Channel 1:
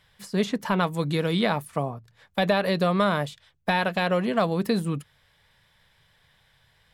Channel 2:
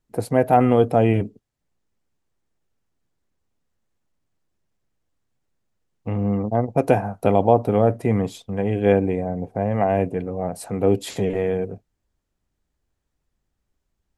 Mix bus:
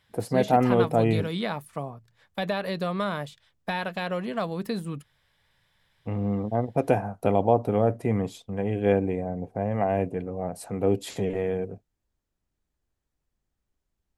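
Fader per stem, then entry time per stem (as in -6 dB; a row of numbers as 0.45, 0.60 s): -6.0, -5.0 dB; 0.00, 0.00 s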